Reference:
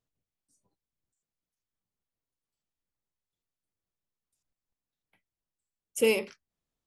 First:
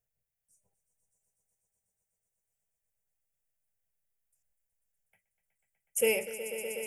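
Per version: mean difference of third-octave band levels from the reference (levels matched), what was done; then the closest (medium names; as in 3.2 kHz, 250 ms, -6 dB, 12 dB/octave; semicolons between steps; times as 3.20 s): 6.5 dB: treble shelf 6.6 kHz +9 dB; static phaser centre 1.1 kHz, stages 6; echo with a slow build-up 123 ms, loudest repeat 5, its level -13 dB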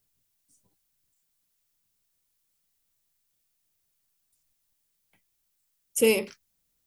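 1.5 dB: treble shelf 5.3 kHz +9.5 dB; added noise blue -76 dBFS; bass shelf 370 Hz +6.5 dB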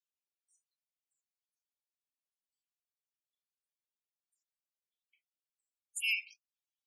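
14.5 dB: steep high-pass 2.2 kHz 96 dB/octave; loudest bins only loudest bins 32; warped record 33 1/3 rpm, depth 160 cents; trim +1 dB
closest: second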